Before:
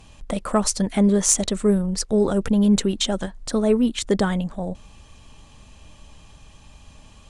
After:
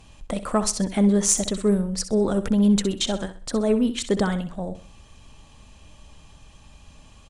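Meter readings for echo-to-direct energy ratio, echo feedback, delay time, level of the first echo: -11.5 dB, 33%, 64 ms, -12.0 dB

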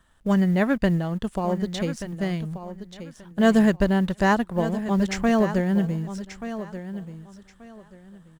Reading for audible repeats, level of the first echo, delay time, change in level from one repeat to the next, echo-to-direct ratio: 2, -12.0 dB, 1182 ms, -13.0 dB, -12.0 dB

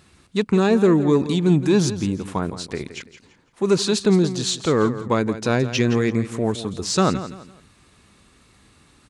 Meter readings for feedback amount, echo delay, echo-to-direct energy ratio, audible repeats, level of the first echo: 31%, 168 ms, -12.5 dB, 3, -13.0 dB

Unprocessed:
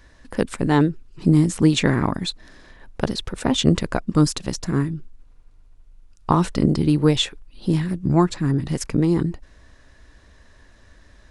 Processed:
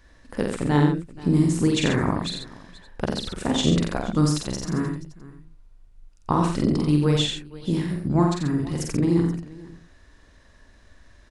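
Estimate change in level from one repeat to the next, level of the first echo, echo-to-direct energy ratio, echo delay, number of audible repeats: no regular repeats, -3.5 dB, -0.5 dB, 47 ms, 5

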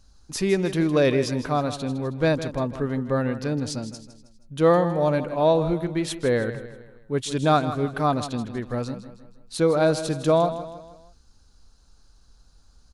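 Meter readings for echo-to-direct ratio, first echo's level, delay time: -11.5 dB, -12.5 dB, 159 ms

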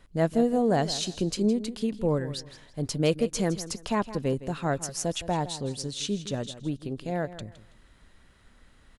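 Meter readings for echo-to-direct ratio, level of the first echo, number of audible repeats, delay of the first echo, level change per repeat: -14.0 dB, -14.5 dB, 2, 163 ms, -11.5 dB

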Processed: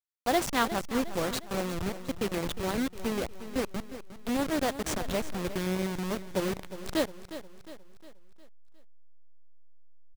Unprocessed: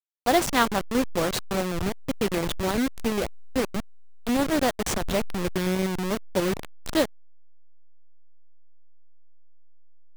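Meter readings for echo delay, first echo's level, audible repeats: 358 ms, -13.0 dB, 4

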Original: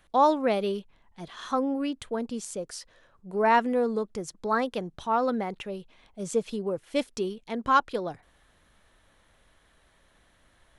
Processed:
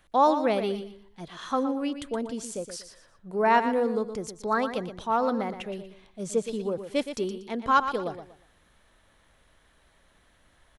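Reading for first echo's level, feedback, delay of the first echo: -10.0 dB, 29%, 119 ms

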